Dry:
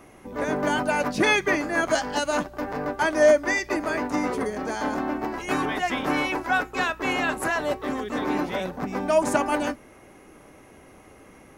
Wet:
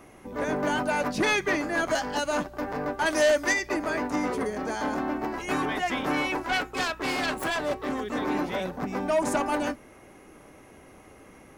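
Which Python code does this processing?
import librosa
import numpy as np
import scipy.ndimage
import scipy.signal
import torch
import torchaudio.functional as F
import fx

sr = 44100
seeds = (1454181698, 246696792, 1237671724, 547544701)

y = fx.self_delay(x, sr, depth_ms=0.2, at=(6.44, 7.95))
y = 10.0 ** (-17.0 / 20.0) * np.tanh(y / 10.0 ** (-17.0 / 20.0))
y = fx.high_shelf(y, sr, hz=2700.0, db=10.5, at=(3.05, 3.52), fade=0.02)
y = F.gain(torch.from_numpy(y), -1.0).numpy()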